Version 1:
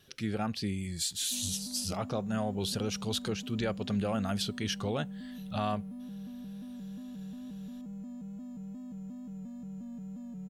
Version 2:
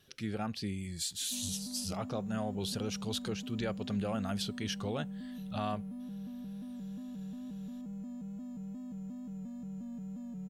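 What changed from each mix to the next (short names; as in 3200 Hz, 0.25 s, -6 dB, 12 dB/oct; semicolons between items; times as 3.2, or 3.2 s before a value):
speech -3.5 dB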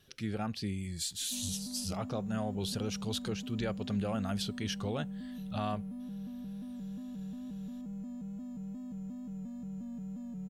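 master: add low shelf 89 Hz +5.5 dB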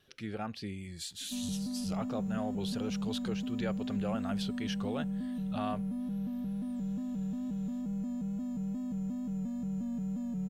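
speech: add tone controls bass -6 dB, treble -7 dB; background +6.0 dB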